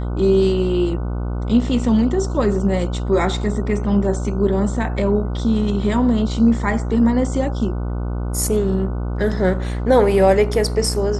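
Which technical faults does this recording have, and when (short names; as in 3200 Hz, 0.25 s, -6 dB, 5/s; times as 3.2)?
buzz 60 Hz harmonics 25 -23 dBFS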